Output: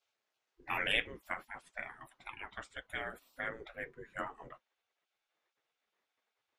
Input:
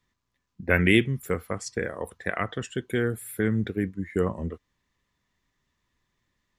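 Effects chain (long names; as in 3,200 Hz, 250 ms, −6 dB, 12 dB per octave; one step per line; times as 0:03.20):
low-pass filter 2,700 Hz 6 dB per octave, from 0:00.92 1,200 Hz
gate on every frequency bin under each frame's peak −20 dB weak
flanger 1.8 Hz, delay 7 ms, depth 2.9 ms, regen −44%
level +7.5 dB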